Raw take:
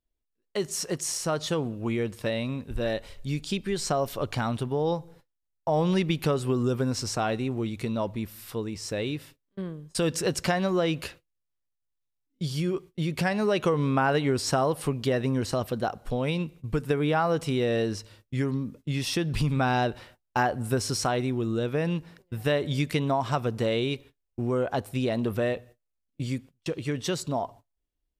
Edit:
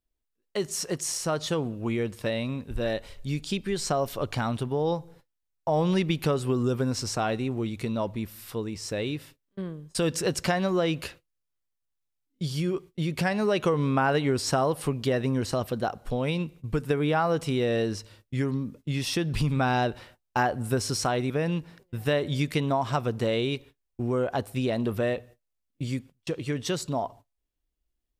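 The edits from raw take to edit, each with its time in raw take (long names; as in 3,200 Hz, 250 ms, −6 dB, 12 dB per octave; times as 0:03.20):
0:21.30–0:21.69: remove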